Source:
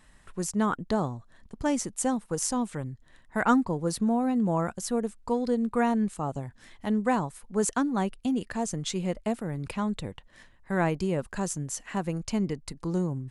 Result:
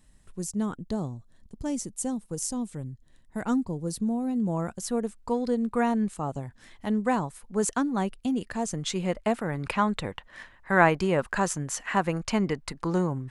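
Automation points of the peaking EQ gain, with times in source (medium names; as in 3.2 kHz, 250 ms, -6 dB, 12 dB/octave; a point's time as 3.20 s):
peaking EQ 1.4 kHz 2.8 oct
4.20 s -12 dB
4.97 s 0 dB
8.54 s 0 dB
9.55 s +11 dB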